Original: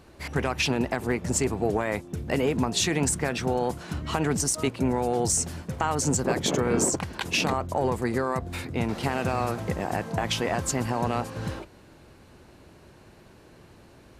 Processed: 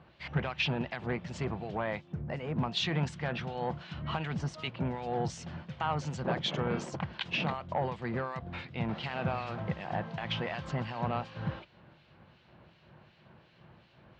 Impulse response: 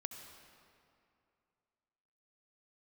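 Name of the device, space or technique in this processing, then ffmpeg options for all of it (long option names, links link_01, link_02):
guitar amplifier with harmonic tremolo: -filter_complex "[0:a]acrossover=split=2000[link_01][link_02];[link_01]aeval=exprs='val(0)*(1-0.7/2+0.7/2*cos(2*PI*2.7*n/s))':channel_layout=same[link_03];[link_02]aeval=exprs='val(0)*(1-0.7/2-0.7/2*cos(2*PI*2.7*n/s))':channel_layout=same[link_04];[link_03][link_04]amix=inputs=2:normalize=0,asoftclip=type=tanh:threshold=-17.5dB,highpass=78,equalizer=frequency=84:width_type=q:width=4:gain=-5,equalizer=frequency=150:width_type=q:width=4:gain=5,equalizer=frequency=280:width_type=q:width=4:gain=-10,equalizer=frequency=420:width_type=q:width=4:gain=-8,equalizer=frequency=3100:width_type=q:width=4:gain=4,lowpass=frequency=4000:width=0.5412,lowpass=frequency=4000:width=1.3066,asplit=3[link_05][link_06][link_07];[link_05]afade=type=out:start_time=2.12:duration=0.02[link_08];[link_06]equalizer=frequency=3400:width_type=o:width=1.2:gain=-14,afade=type=in:start_time=2.12:duration=0.02,afade=type=out:start_time=2.55:duration=0.02[link_09];[link_07]afade=type=in:start_time=2.55:duration=0.02[link_10];[link_08][link_09][link_10]amix=inputs=3:normalize=0,volume=-1.5dB"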